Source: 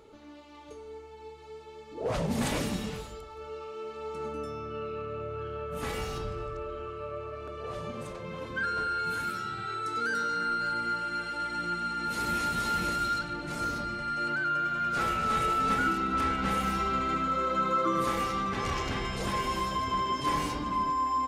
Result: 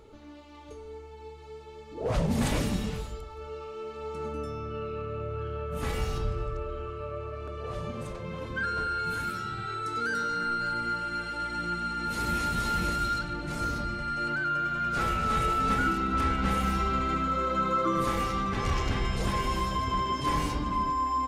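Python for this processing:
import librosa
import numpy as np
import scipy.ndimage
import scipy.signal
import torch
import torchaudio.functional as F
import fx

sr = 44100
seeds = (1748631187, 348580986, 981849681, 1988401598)

y = fx.low_shelf(x, sr, hz=110.0, db=11.5)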